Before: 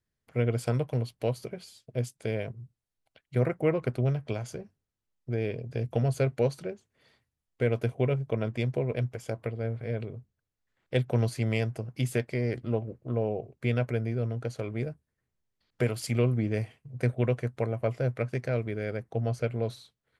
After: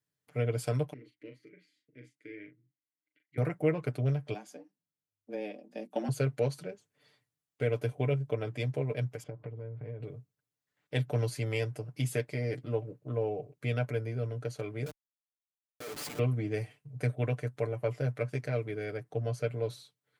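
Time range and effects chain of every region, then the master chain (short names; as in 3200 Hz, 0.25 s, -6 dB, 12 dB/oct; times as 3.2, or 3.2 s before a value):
0.93–3.38 double band-pass 780 Hz, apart 2.7 oct + doubler 39 ms -7 dB
4.34–6.09 frequency shift +100 Hz + upward expander, over -39 dBFS
9.23–10.03 LPF 2900 Hz + tilt -2.5 dB/oct + compressor 8:1, threshold -33 dBFS
14.86–16.19 HPF 300 Hz 24 dB/oct + Schmitt trigger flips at -41 dBFS
whole clip: HPF 99 Hz; high shelf 5100 Hz +4.5 dB; comb 6.8 ms, depth 72%; gain -5 dB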